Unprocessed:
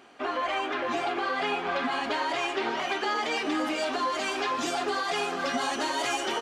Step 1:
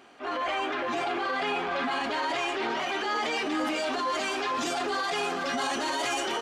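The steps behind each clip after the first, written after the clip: transient shaper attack -8 dB, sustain +5 dB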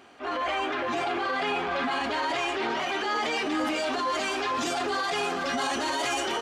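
bell 82 Hz +8.5 dB 0.81 oct; gain +1 dB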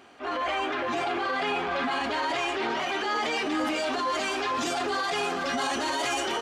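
nothing audible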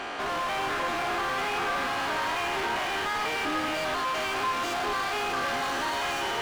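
stepped spectrum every 0.1 s; overdrive pedal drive 38 dB, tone 2700 Hz, clips at -17.5 dBFS; delay with a stepping band-pass 0.396 s, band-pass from 1300 Hz, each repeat 0.7 oct, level -4 dB; gain -6 dB

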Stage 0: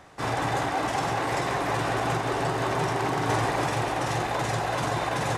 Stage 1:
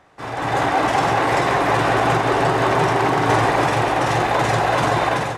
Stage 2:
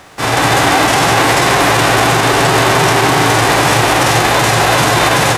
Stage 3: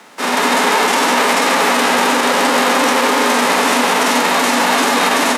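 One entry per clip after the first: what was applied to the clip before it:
tone controls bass -3 dB, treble -6 dB; AGC gain up to 13.5 dB; gain -2.5 dB
spectral whitening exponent 0.6; maximiser +15.5 dB; gain -1 dB
frequency shift +130 Hz; gain -3 dB

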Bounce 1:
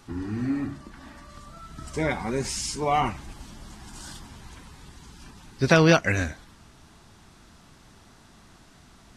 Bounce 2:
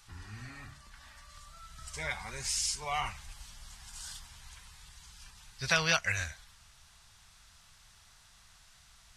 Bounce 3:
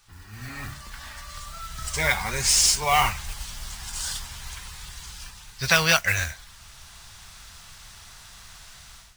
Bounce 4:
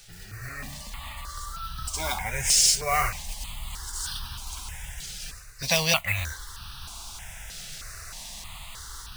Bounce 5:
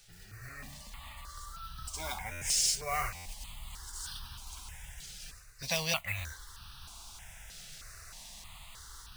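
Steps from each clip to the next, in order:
passive tone stack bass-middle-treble 10-0-10
AGC gain up to 14.5 dB; modulation noise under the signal 14 dB; gain -1 dB
reverse; upward compressor, threshold -28 dBFS; reverse; step phaser 3.2 Hz 280–2100 Hz
stuck buffer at 2.31/3.15, samples 512, times 8; gain -9 dB

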